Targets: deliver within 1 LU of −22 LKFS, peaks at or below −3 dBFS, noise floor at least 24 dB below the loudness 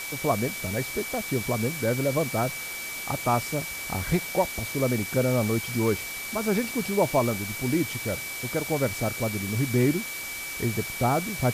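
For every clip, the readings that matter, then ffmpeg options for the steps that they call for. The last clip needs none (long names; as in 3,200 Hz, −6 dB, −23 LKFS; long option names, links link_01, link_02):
interfering tone 2,300 Hz; level of the tone −35 dBFS; background noise floor −35 dBFS; target noise floor −51 dBFS; integrated loudness −27.0 LKFS; sample peak −11.0 dBFS; target loudness −22.0 LKFS
→ -af "bandreject=frequency=2300:width=30"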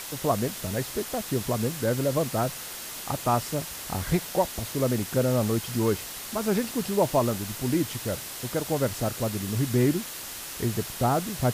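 interfering tone none found; background noise floor −38 dBFS; target noise floor −52 dBFS
→ -af "afftdn=noise_reduction=14:noise_floor=-38"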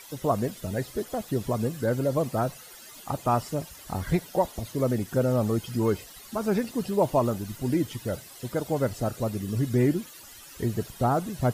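background noise floor −47 dBFS; target noise floor −52 dBFS
→ -af "afftdn=noise_reduction=6:noise_floor=-47"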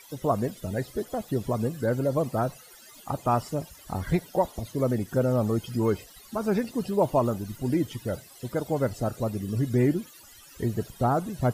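background noise floor −51 dBFS; target noise floor −52 dBFS
→ -af "afftdn=noise_reduction=6:noise_floor=-51"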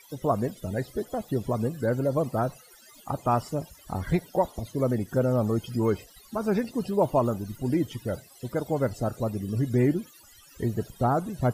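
background noise floor −54 dBFS; integrated loudness −28.0 LKFS; sample peak −12.0 dBFS; target loudness −22.0 LKFS
→ -af "volume=6dB"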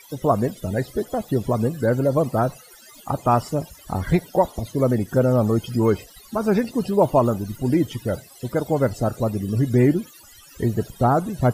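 integrated loudness −22.0 LKFS; sample peak −6.0 dBFS; background noise floor −48 dBFS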